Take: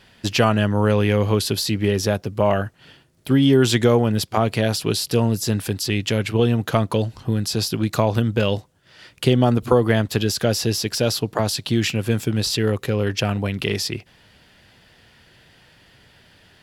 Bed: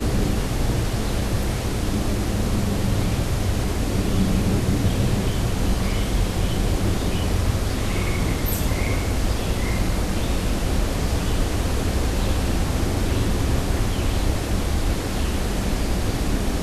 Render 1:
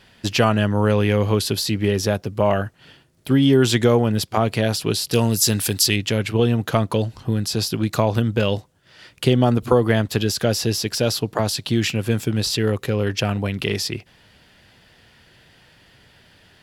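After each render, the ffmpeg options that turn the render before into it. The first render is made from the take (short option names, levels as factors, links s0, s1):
-filter_complex "[0:a]asettb=1/sr,asplit=3[s0][s1][s2];[s0]atrim=end=5.134[s3];[s1]atrim=start=5.13:end=5.96,asetpts=PTS-STARTPTS,afade=t=in:d=0.004:c=qsin,afade=t=out:st=0.826:d=0.004:c=qsin,highshelf=f=2800:g=11.5[s4];[s2]atrim=start=5.956[s5];[s3][s4]acrossfade=d=0.004:c1=hsin:c2=qsin[s6];[s6][s5]acrossfade=d=0.004:c1=qsin:c2=hsin"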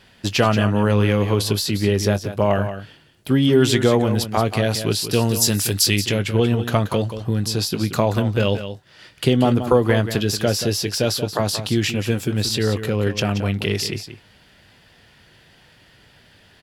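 -filter_complex "[0:a]asplit=2[s0][s1];[s1]adelay=20,volume=0.2[s2];[s0][s2]amix=inputs=2:normalize=0,asplit=2[s3][s4];[s4]aecho=0:1:180:0.299[s5];[s3][s5]amix=inputs=2:normalize=0"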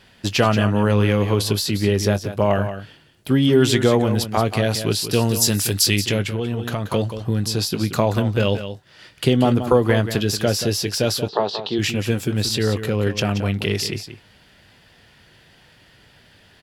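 -filter_complex "[0:a]asettb=1/sr,asplit=3[s0][s1][s2];[s0]atrim=end=6.224[s3];[s1]atrim=start=6.22:end=6.93,asetpts=PTS-STARTPTS,afade=t=in:d=0.004:c=qsin,afade=t=out:st=0.706:d=0.004:c=qsin,acompressor=threshold=0.0891:ratio=3:attack=3.2:release=140:knee=1:detection=peak[s4];[s2]atrim=start=6.926[s5];[s3][s4]acrossfade=d=0.004:c1=hsin:c2=qsin[s6];[s6][s5]acrossfade=d=0.004:c1=qsin:c2=hsin,asplit=3[s7][s8][s9];[s7]afade=t=out:st=11.27:d=0.02[s10];[s8]highpass=260,equalizer=f=280:t=q:w=4:g=-7,equalizer=f=410:t=q:w=4:g=9,equalizer=f=870:t=q:w=4:g=6,equalizer=f=1500:t=q:w=4:g=-5,equalizer=f=2200:t=q:w=4:g=-9,equalizer=f=3900:t=q:w=4:g=5,lowpass=f=4000:w=0.5412,lowpass=f=4000:w=1.3066,afade=t=in:st=11.27:d=0.02,afade=t=out:st=11.78:d=0.02[s11];[s9]afade=t=in:st=11.78:d=0.02[s12];[s10][s11][s12]amix=inputs=3:normalize=0"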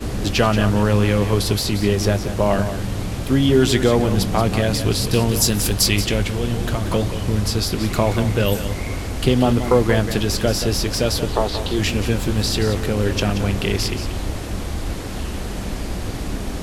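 -filter_complex "[1:a]volume=0.668[s0];[0:a][s0]amix=inputs=2:normalize=0"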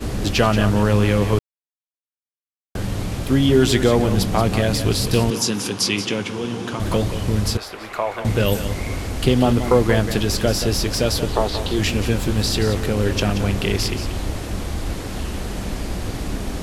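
-filter_complex "[0:a]asettb=1/sr,asplit=3[s0][s1][s2];[s0]atrim=end=5.304[s3];[s1]atrim=start=5.3:end=6.8,asetpts=PTS-STARTPTS,afade=t=in:d=0.004:c=qsin,afade=t=out:st=1.496:d=0.004:c=qsin,highpass=f=140:w=0.5412,highpass=f=140:w=1.3066,equalizer=f=160:t=q:w=4:g=-7,equalizer=f=630:t=q:w=4:g=-8,equalizer=f=1000:t=q:w=4:g=3,equalizer=f=1900:t=q:w=4:g=-4,equalizer=f=4200:t=q:w=4:g=-5,equalizer=f=7900:t=q:w=4:g=-8,lowpass=f=9200:w=0.5412,lowpass=f=9200:w=1.3066[s4];[s2]atrim=start=6.796[s5];[s3][s4]acrossfade=d=0.004:c1=hsin:c2=qsin[s6];[s6][s5]acrossfade=d=0.004:c1=qsin:c2=hsin,asettb=1/sr,asplit=3[s7][s8][s9];[s7]atrim=end=7.574[s10];[s8]atrim=start=7.57:end=8.25,asetpts=PTS-STARTPTS,afade=t=in:d=0.004:c=qsin,afade=t=out:st=0.676:d=0.004:c=qsin,acrossover=split=500 2500:gain=0.0708 1 0.224[s11][s12][s13];[s11][s12][s13]amix=inputs=3:normalize=0[s14];[s9]atrim=start=8.246[s15];[s10][s14]acrossfade=d=0.004:c1=hsin:c2=qsin[s16];[s16][s15]acrossfade=d=0.004:c1=qsin:c2=hsin,asplit=3[s17][s18][s19];[s17]atrim=end=1.39,asetpts=PTS-STARTPTS,afade=t=out:st=1.386:d=0.004:c=hsin[s20];[s18]atrim=start=1.39:end=2.75,asetpts=PTS-STARTPTS,volume=0[s21];[s19]atrim=start=2.75,asetpts=PTS-STARTPTS,afade=t=in:d=0.004:c=hsin[s22];[s20][s21][s22]concat=n=3:v=0:a=1"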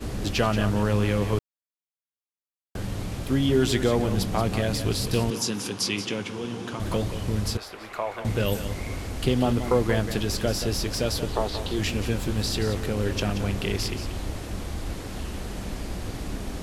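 -af "volume=0.473"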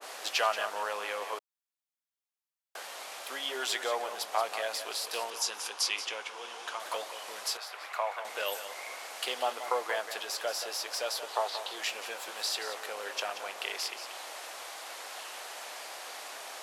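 -af "highpass=f=660:w=0.5412,highpass=f=660:w=1.3066,adynamicequalizer=threshold=0.00794:dfrequency=1500:dqfactor=0.7:tfrequency=1500:tqfactor=0.7:attack=5:release=100:ratio=0.375:range=2.5:mode=cutabove:tftype=highshelf"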